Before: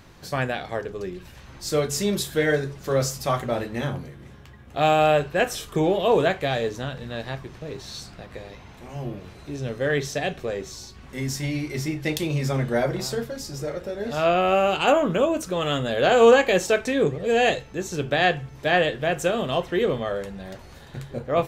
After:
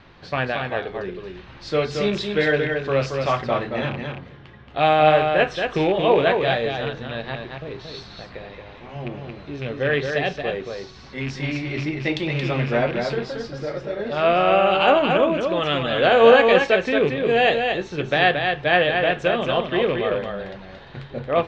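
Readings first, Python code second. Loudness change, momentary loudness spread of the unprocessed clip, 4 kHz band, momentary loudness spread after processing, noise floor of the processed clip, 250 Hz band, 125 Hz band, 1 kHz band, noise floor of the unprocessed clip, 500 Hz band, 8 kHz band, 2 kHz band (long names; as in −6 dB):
+3.0 dB, 17 LU, +3.5 dB, 19 LU, −43 dBFS, +1.0 dB, +0.5 dB, +3.5 dB, −46 dBFS, +3.0 dB, below −10 dB, +4.5 dB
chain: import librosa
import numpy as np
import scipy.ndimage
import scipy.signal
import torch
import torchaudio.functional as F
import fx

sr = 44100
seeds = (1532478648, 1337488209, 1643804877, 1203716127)

y = fx.rattle_buzz(x, sr, strikes_db=-27.0, level_db=-25.0)
y = scipy.signal.sosfilt(scipy.signal.butter(4, 4000.0, 'lowpass', fs=sr, output='sos'), y)
y = fx.low_shelf(y, sr, hz=400.0, db=-5.0)
y = fx.vibrato(y, sr, rate_hz=1.1, depth_cents=11.0)
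y = y + 10.0 ** (-5.0 / 20.0) * np.pad(y, (int(226 * sr / 1000.0), 0))[:len(y)]
y = F.gain(torch.from_numpy(y), 3.5).numpy()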